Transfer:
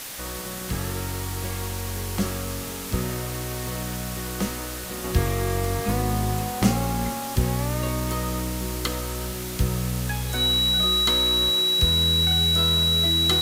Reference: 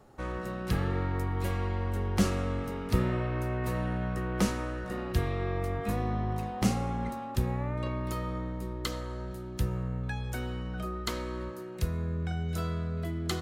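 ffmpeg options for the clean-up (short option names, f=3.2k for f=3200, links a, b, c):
-af "bandreject=f=3.9k:w=30,afwtdn=0.018,asetnsamples=n=441:p=0,asendcmd='5.04 volume volume -6.5dB',volume=0dB"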